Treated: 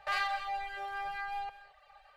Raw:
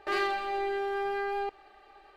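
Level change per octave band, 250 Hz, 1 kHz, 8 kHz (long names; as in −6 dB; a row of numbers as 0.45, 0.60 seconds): below −25 dB, −3.0 dB, can't be measured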